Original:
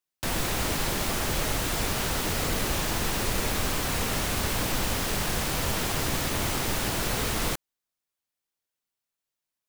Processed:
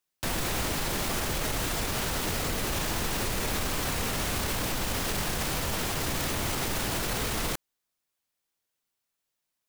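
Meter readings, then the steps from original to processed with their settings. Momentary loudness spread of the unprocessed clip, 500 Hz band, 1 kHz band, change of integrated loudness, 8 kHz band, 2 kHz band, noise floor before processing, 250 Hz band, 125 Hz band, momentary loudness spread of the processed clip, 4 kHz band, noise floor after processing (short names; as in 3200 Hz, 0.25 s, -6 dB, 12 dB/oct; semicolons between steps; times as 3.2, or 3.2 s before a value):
0 LU, -2.0 dB, -2.0 dB, -2.0 dB, -2.0 dB, -2.0 dB, under -85 dBFS, -2.0 dB, -2.5 dB, 1 LU, -2.0 dB, -83 dBFS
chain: limiter -24.5 dBFS, peak gain reduction 10 dB; gain +4 dB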